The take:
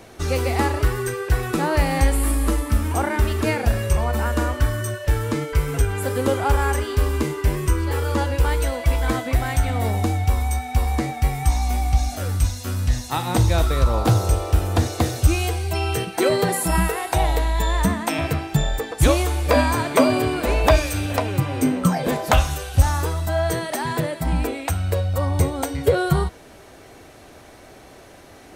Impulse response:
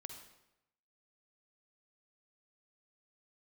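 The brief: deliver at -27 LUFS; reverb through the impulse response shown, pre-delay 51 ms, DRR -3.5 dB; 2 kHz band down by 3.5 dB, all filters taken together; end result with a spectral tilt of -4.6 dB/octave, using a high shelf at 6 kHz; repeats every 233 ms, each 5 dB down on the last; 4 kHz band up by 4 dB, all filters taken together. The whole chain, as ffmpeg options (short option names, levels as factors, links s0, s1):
-filter_complex "[0:a]equalizer=f=2000:t=o:g=-6.5,equalizer=f=4000:t=o:g=4,highshelf=f=6000:g=8,aecho=1:1:233|466|699|932|1165|1398|1631:0.562|0.315|0.176|0.0988|0.0553|0.031|0.0173,asplit=2[s0][s1];[1:a]atrim=start_sample=2205,adelay=51[s2];[s1][s2]afir=irnorm=-1:irlink=0,volume=2.51[s3];[s0][s3]amix=inputs=2:normalize=0,volume=0.237"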